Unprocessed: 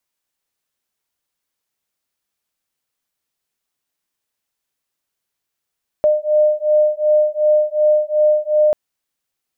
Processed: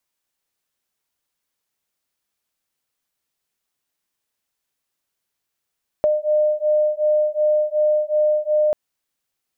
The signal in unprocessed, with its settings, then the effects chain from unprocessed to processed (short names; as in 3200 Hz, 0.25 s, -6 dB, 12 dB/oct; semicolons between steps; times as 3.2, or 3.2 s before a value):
beating tones 605 Hz, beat 2.7 Hz, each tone -15 dBFS 2.69 s
compressor 4:1, threshold -16 dBFS